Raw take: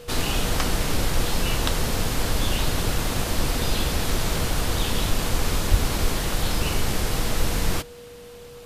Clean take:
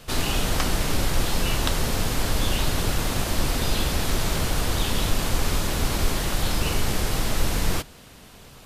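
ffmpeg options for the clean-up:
-filter_complex "[0:a]bandreject=f=480:w=30,asplit=3[s0][s1][s2];[s0]afade=t=out:st=5.7:d=0.02[s3];[s1]highpass=f=140:w=0.5412,highpass=f=140:w=1.3066,afade=t=in:st=5.7:d=0.02,afade=t=out:st=5.82:d=0.02[s4];[s2]afade=t=in:st=5.82:d=0.02[s5];[s3][s4][s5]amix=inputs=3:normalize=0"

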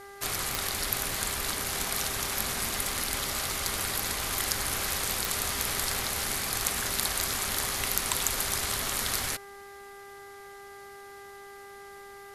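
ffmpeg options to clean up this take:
-af "adeclick=t=4,bandreject=f=399:t=h:w=4,bandreject=f=798:t=h:w=4,bandreject=f=1197:t=h:w=4,bandreject=f=1596:t=h:w=4,bandreject=f=1995:t=h:w=4"

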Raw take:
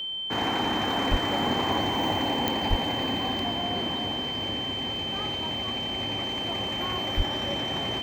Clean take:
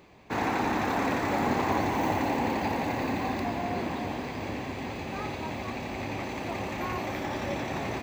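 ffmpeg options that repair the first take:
-filter_complex "[0:a]adeclick=t=4,bandreject=f=3100:w=30,asplit=3[s0][s1][s2];[s0]afade=t=out:st=1.1:d=0.02[s3];[s1]highpass=f=140:w=0.5412,highpass=f=140:w=1.3066,afade=t=in:st=1.1:d=0.02,afade=t=out:st=1.22:d=0.02[s4];[s2]afade=t=in:st=1.22:d=0.02[s5];[s3][s4][s5]amix=inputs=3:normalize=0,asplit=3[s6][s7][s8];[s6]afade=t=out:st=2.69:d=0.02[s9];[s7]highpass=f=140:w=0.5412,highpass=f=140:w=1.3066,afade=t=in:st=2.69:d=0.02,afade=t=out:st=2.81:d=0.02[s10];[s8]afade=t=in:st=2.81:d=0.02[s11];[s9][s10][s11]amix=inputs=3:normalize=0,asplit=3[s12][s13][s14];[s12]afade=t=out:st=7.16:d=0.02[s15];[s13]highpass=f=140:w=0.5412,highpass=f=140:w=1.3066,afade=t=in:st=7.16:d=0.02,afade=t=out:st=7.28:d=0.02[s16];[s14]afade=t=in:st=7.28:d=0.02[s17];[s15][s16][s17]amix=inputs=3:normalize=0"

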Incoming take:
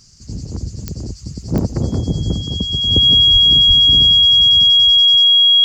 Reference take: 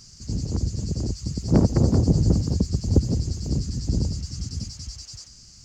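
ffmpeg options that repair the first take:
-filter_complex "[0:a]adeclick=t=4,bandreject=f=3300:w=30,asplit=3[s0][s1][s2];[s0]afade=t=out:st=3.32:d=0.02[s3];[s1]highpass=f=140:w=0.5412,highpass=f=140:w=1.3066,afade=t=in:st=3.32:d=0.02,afade=t=out:st=3.44:d=0.02[s4];[s2]afade=t=in:st=3.44:d=0.02[s5];[s3][s4][s5]amix=inputs=3:normalize=0,asplit=3[s6][s7][s8];[s6]afade=t=out:st=3.67:d=0.02[s9];[s7]highpass=f=140:w=0.5412,highpass=f=140:w=1.3066,afade=t=in:st=3.67:d=0.02,afade=t=out:st=3.79:d=0.02[s10];[s8]afade=t=in:st=3.79:d=0.02[s11];[s9][s10][s11]amix=inputs=3:normalize=0"

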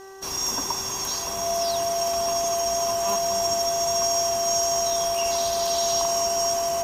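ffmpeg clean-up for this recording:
-af "bandreject=f=386.8:t=h:w=4,bandreject=f=773.6:t=h:w=4,bandreject=f=1160.4:t=h:w=4,bandreject=f=1547.2:t=h:w=4,bandreject=f=1934:t=h:w=4,bandreject=f=680:w=30"

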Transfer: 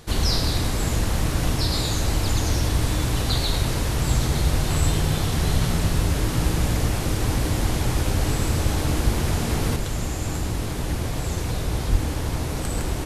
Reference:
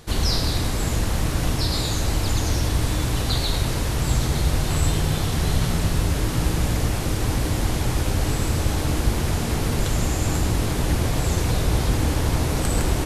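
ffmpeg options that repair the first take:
-filter_complex "[0:a]asplit=3[s0][s1][s2];[s0]afade=t=out:st=11.91:d=0.02[s3];[s1]highpass=f=140:w=0.5412,highpass=f=140:w=1.3066,afade=t=in:st=11.91:d=0.02,afade=t=out:st=12.03:d=0.02[s4];[s2]afade=t=in:st=12.03:d=0.02[s5];[s3][s4][s5]amix=inputs=3:normalize=0,asetnsamples=n=441:p=0,asendcmd='9.76 volume volume 4.5dB',volume=1"

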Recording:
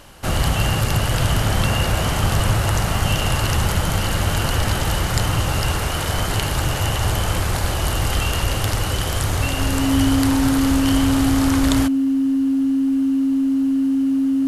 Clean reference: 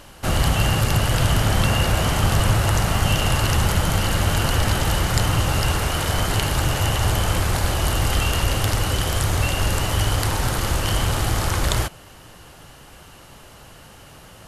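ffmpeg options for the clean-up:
-af "bandreject=f=270:w=30"

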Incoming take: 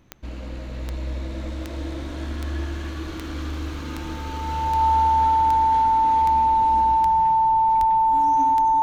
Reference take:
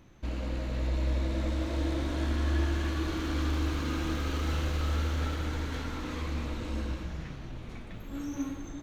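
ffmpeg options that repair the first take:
-filter_complex "[0:a]adeclick=t=4,bandreject=f=890:w=30,asplit=3[s0][s1][s2];[s0]afade=t=out:st=7.79:d=0.02[s3];[s1]highpass=f=140:w=0.5412,highpass=f=140:w=1.3066,afade=t=in:st=7.79:d=0.02,afade=t=out:st=7.91:d=0.02[s4];[s2]afade=t=in:st=7.91:d=0.02[s5];[s3][s4][s5]amix=inputs=3:normalize=0"

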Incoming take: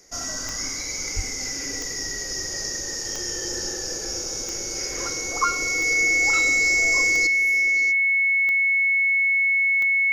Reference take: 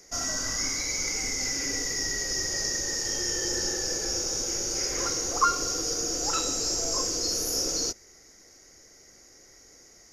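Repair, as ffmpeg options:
-filter_complex "[0:a]adeclick=t=4,bandreject=f=2200:w=30,asplit=3[s0][s1][s2];[s0]afade=t=out:st=1.15:d=0.02[s3];[s1]highpass=f=140:w=0.5412,highpass=f=140:w=1.3066,afade=t=in:st=1.15:d=0.02,afade=t=out:st=1.27:d=0.02[s4];[s2]afade=t=in:st=1.27:d=0.02[s5];[s3][s4][s5]amix=inputs=3:normalize=0,asetnsamples=n=441:p=0,asendcmd='7.27 volume volume 11.5dB',volume=1"

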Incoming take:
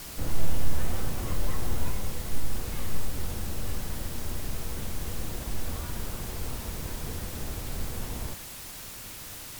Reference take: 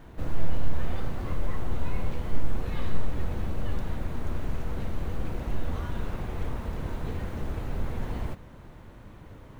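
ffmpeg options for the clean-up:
-af "afwtdn=0.0079,asetnsamples=n=441:p=0,asendcmd='1.91 volume volume 3.5dB',volume=1"

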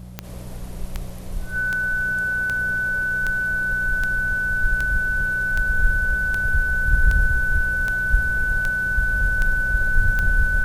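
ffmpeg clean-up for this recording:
-af "adeclick=t=4,bandreject=f=60.9:t=h:w=4,bandreject=f=121.8:t=h:w=4,bandreject=f=182.7:t=h:w=4,bandreject=f=1500:w=30"

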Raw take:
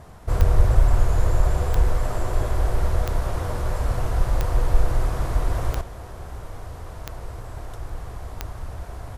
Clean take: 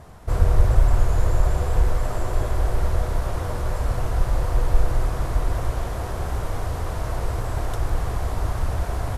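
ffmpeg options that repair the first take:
-af "adeclick=t=4,asetnsamples=n=441:p=0,asendcmd='5.81 volume volume 9.5dB',volume=1"

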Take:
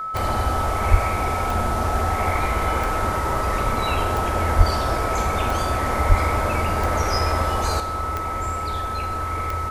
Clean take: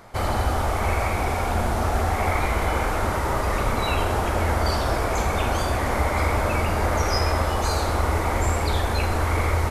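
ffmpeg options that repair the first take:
-filter_complex "[0:a]adeclick=t=4,bandreject=f=1300:w=30,asplit=3[s0][s1][s2];[s0]afade=t=out:st=0.9:d=0.02[s3];[s1]highpass=f=140:w=0.5412,highpass=f=140:w=1.3066,afade=t=in:st=0.9:d=0.02,afade=t=out:st=1.02:d=0.02[s4];[s2]afade=t=in:st=1.02:d=0.02[s5];[s3][s4][s5]amix=inputs=3:normalize=0,asplit=3[s6][s7][s8];[s6]afade=t=out:st=4.57:d=0.02[s9];[s7]highpass=f=140:w=0.5412,highpass=f=140:w=1.3066,afade=t=in:st=4.57:d=0.02,afade=t=out:st=4.69:d=0.02[s10];[s8]afade=t=in:st=4.69:d=0.02[s11];[s9][s10][s11]amix=inputs=3:normalize=0,asplit=3[s12][s13][s14];[s12]afade=t=out:st=6.08:d=0.02[s15];[s13]highpass=f=140:w=0.5412,highpass=f=140:w=1.3066,afade=t=in:st=6.08:d=0.02,afade=t=out:st=6.2:d=0.02[s16];[s14]afade=t=in:st=6.2:d=0.02[s17];[s15][s16][s17]amix=inputs=3:normalize=0,asetnsamples=n=441:p=0,asendcmd='7.8 volume volume 6.5dB',volume=1"

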